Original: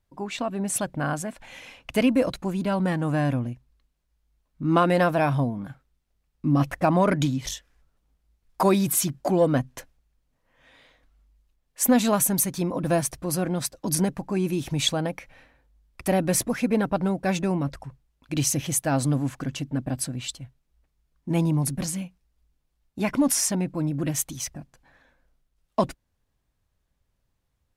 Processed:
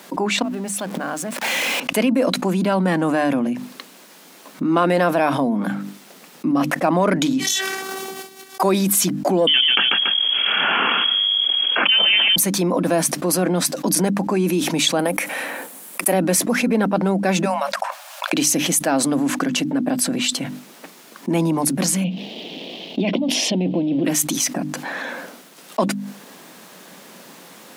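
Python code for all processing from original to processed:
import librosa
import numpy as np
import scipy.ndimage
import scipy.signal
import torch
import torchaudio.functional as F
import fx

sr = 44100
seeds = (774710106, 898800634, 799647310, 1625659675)

y = fx.chain(x, sr, fx.zero_step(step_db=-36.5),
    fx.gate_flip(shuts_db=-24.0, range_db=-25), at=(0.42, 1.8))
y = fx.chain(y, sr, fx.robotise(hz=385.0),
    fx.sustainer(db_per_s=37.0), at=(7.4, 8.62))
y = fx.chain(y, sr, fx.freq_invert(carrier_hz=3300),
    fx.echo_feedback(ms=142, feedback_pct=19, wet_db=-12.0),
    fx.env_flatten(amount_pct=70), at=(9.47, 12.36))
y = fx.chain(y, sr, fx.highpass(hz=320.0, slope=6),
    fx.high_shelf_res(hz=7100.0, db=10.0, q=1.5), at=(14.99, 16.13))
y = fx.chain(y, sr, fx.brickwall_highpass(low_hz=540.0),
    fx.notch(hz=2000.0, q=17.0),
    fx.band_squash(depth_pct=70), at=(17.45, 18.33))
y = fx.chain(y, sr, fx.law_mismatch(coded='mu'),
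    fx.curve_eq(hz=(670.0, 1400.0, 3100.0, 8100.0), db=(0, -24, 6, -29)),
    fx.over_compress(threshold_db=-28.0, ratio=-1.0), at=(22.04, 24.05))
y = scipy.signal.sosfilt(scipy.signal.butter(8, 180.0, 'highpass', fs=sr, output='sos'), y)
y = fx.hum_notches(y, sr, base_hz=50, count=6)
y = fx.env_flatten(y, sr, amount_pct=70)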